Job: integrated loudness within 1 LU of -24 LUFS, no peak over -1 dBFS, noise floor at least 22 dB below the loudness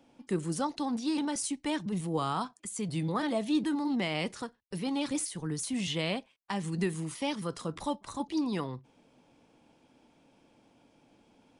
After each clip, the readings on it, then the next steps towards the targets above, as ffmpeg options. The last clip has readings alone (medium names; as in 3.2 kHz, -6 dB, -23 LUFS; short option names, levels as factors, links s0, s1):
loudness -33.0 LUFS; peak level -19.0 dBFS; loudness target -24.0 LUFS
-> -af "volume=2.82"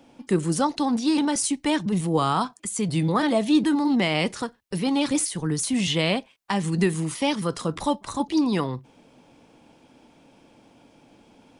loudness -24.0 LUFS; peak level -10.0 dBFS; noise floor -57 dBFS